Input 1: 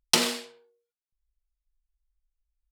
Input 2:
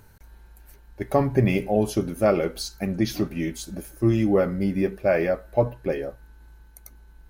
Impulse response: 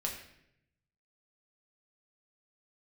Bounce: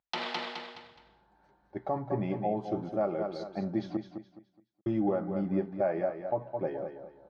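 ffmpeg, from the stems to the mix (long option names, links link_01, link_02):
-filter_complex "[0:a]volume=2dB,asplit=2[link_01][link_02];[link_02]volume=-5dB[link_03];[1:a]equalizer=frequency=2400:width_type=o:width=1.6:gain=-13.5,adelay=750,volume=-1.5dB,asplit=3[link_04][link_05][link_06];[link_04]atrim=end=3.97,asetpts=PTS-STARTPTS,afade=type=out:start_time=3.966:duration=0.004:curve=hsin[link_07];[link_05]atrim=start=3.97:end=4.86,asetpts=PTS-STARTPTS,volume=0[link_08];[link_06]atrim=start=4.86,asetpts=PTS-STARTPTS,afade=type=in:duration=0.004:curve=hsin[link_09];[link_07][link_08][link_09]concat=n=3:v=0:a=1,asplit=2[link_10][link_11];[link_11]volume=-9dB[link_12];[link_03][link_12]amix=inputs=2:normalize=0,aecho=0:1:210|420|630|840:1|0.29|0.0841|0.0244[link_13];[link_01][link_10][link_13]amix=inputs=3:normalize=0,highpass=200,equalizer=frequency=250:width_type=q:width=4:gain=-8,equalizer=frequency=450:width_type=q:width=4:gain=-9,equalizer=frequency=810:width_type=q:width=4:gain=6,equalizer=frequency=2700:width_type=q:width=4:gain=-5,lowpass=frequency=3400:width=0.5412,lowpass=frequency=3400:width=1.3066,alimiter=limit=-19.5dB:level=0:latency=1:release=367"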